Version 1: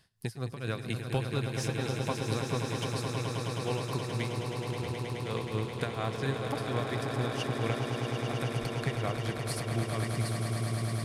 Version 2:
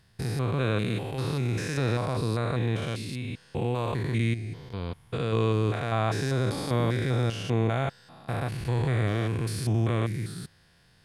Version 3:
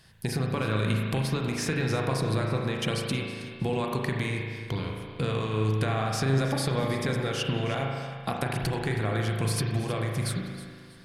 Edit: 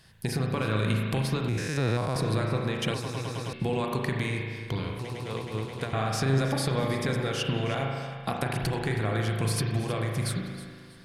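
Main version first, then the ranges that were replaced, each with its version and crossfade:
3
0:01.49–0:02.16: punch in from 2
0:02.94–0:03.53: punch in from 1
0:04.99–0:05.93: punch in from 1

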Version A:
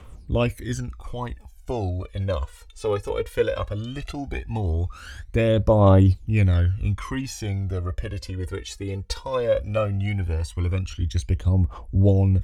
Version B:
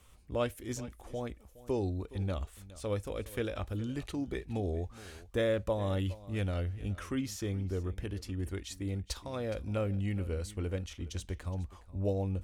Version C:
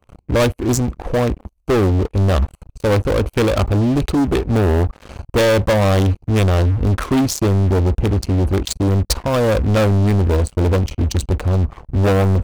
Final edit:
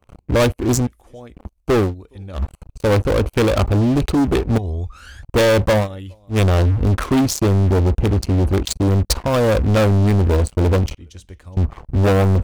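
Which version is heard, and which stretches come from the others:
C
0:00.87–0:01.35: punch in from B
0:01.87–0:02.41: punch in from B, crossfade 0.16 s
0:04.58–0:05.23: punch in from A
0:05.83–0:06.34: punch in from B, crossfade 0.10 s
0:10.97–0:11.57: punch in from B

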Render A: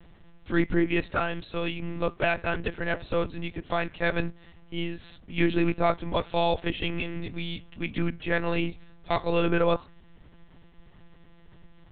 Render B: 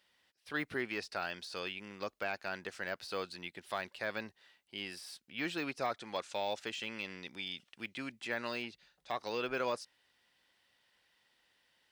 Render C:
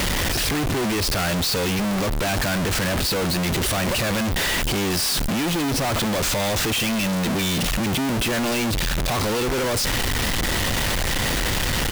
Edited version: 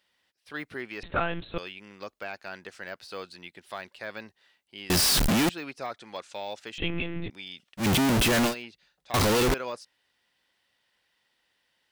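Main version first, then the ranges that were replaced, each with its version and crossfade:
B
0:01.03–0:01.58: punch in from A
0:04.90–0:05.49: punch in from C
0:06.78–0:07.30: punch in from A
0:07.82–0:08.50: punch in from C, crossfade 0.10 s
0:09.14–0:09.54: punch in from C

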